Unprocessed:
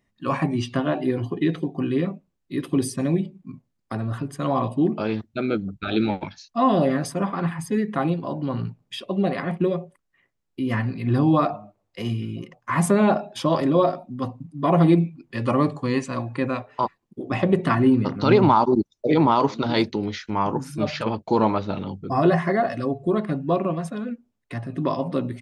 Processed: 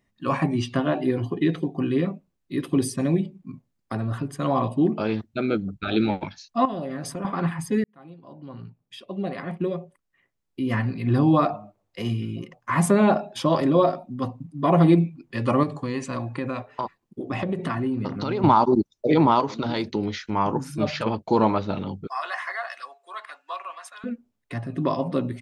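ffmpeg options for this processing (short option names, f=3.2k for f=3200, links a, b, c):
-filter_complex "[0:a]asettb=1/sr,asplit=3[a][b][c];[a]atrim=end=6.654[d];[b]atrim=start=6.65:end=7.25,asetpts=PTS-STARTPTS,afade=t=in:d=0.004:c=qsin,afade=t=out:st=0.596:d=0.004:c=qsin,acompressor=threshold=-28dB:ratio=5:attack=3.2:release=140:knee=1:detection=peak[e];[c]atrim=start=7.246[f];[d][e]acrossfade=d=0.004:c1=hsin:c2=qsin[g];[g][f]acrossfade=d=0.004:c1=qsin:c2=hsin,asettb=1/sr,asplit=3[h][i][j];[h]atrim=end=15.634[k];[i]atrim=start=15.63:end=18.44,asetpts=PTS-STARTPTS,afade=t=in:d=0.004:c=qsin,afade=t=out:st=2.806:d=0.004:c=qsin,acompressor=threshold=-23dB:ratio=5:attack=3.2:release=140:knee=1:detection=peak[l];[j]atrim=start=18.436[m];[k][l]acrossfade=d=0.004:c1=hsin:c2=qsin[n];[n][m]acrossfade=d=0.004:c1=qsin:c2=hsin,asettb=1/sr,asplit=3[o][p][q];[o]atrim=end=19.404[r];[p]atrim=start=19.4:end=19.93,asetpts=PTS-STARTPTS,afade=t=in:d=0.004:c=qsin,afade=t=out:st=0.526:d=0.004:c=qsin,acompressor=threshold=-21dB:ratio=6:attack=3.2:release=140:knee=1:detection=peak[s];[q]atrim=start=19.926[t];[r][s]acrossfade=d=0.004:c1=hsin:c2=qsin[u];[u][t]acrossfade=d=0.004:c1=qsin:c2=hsin,asettb=1/sr,asplit=3[v][w][x];[v]atrim=end=22.074[y];[w]atrim=start=22.07:end=24.04,asetpts=PTS-STARTPTS,afade=t=in:d=0.004:c=qsin,afade=t=out:st=1.966:d=0.004:c=qsin,highpass=f=1k:w=0.5412,highpass=f=1k:w=1.3066[z];[x]atrim=start=24.036[aa];[y][z]acrossfade=d=0.004:c1=hsin:c2=qsin[ab];[ab][aa]acrossfade=d=0.004:c1=qsin:c2=hsin,asplit=2[ac][ad];[ac]atrim=end=7.84,asetpts=PTS-STARTPTS,afade=t=out:st=7.836:d=0.004:c=hsin[ae];[ad]atrim=start=7.84,asetpts=PTS-STARTPTS,afade=t=in:d=3.02[af];[ae][af]concat=n=2:v=0:a=1"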